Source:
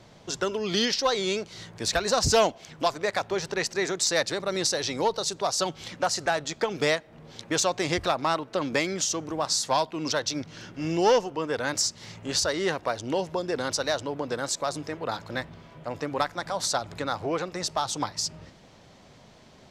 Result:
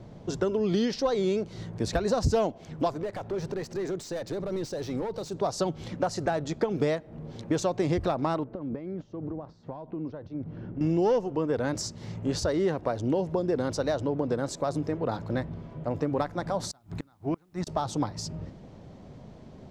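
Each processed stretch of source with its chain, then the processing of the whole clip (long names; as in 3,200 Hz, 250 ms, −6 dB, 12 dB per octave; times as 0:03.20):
0:02.90–0:05.34: downward compressor 2 to 1, threshold −33 dBFS + hard clipping −32 dBFS
0:08.44–0:10.81: downward compressor 8 to 1, threshold −35 dBFS + head-to-tape spacing loss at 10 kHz 44 dB
0:16.71–0:17.67: parametric band 510 Hz −14.5 dB 0.52 octaves + gate with flip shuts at −21 dBFS, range −32 dB + bit-depth reduction 12 bits, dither triangular
whole clip: tilt shelving filter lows +9.5 dB, about 850 Hz; downward compressor 2.5 to 1, threshold −24 dBFS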